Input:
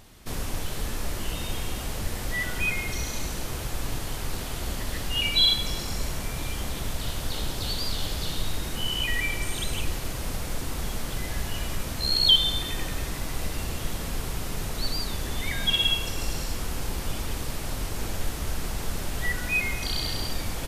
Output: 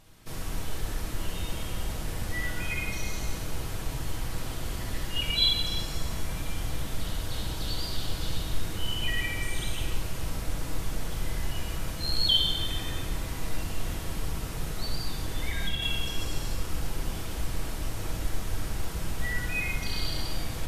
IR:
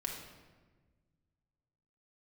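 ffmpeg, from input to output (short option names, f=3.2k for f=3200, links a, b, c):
-filter_complex "[0:a]asettb=1/sr,asplit=3[a][b][c];[a]atrim=end=13.084[d];[b]atrim=start=13.08:end=15.82,asetpts=PTS-STARTPTS,afade=t=in:d=0.004:c=qsin,afade=t=out:st=2.736:d=0.004:c=qsin,acrossover=split=180[e][f];[f]acompressor=threshold=-27dB:ratio=6[g];[e][g]amix=inputs=2:normalize=0[h];[c]atrim=start=15.816[i];[d][h]acrossfade=d=0.004:c1=hsin:c2=qsin[j];[j][i]acrossfade=d=0.004:c1=qsin:c2=hsin[k];[1:a]atrim=start_sample=2205,asetrate=29547,aresample=44100[l];[k][l]afir=irnorm=-1:irlink=0,volume=-7dB"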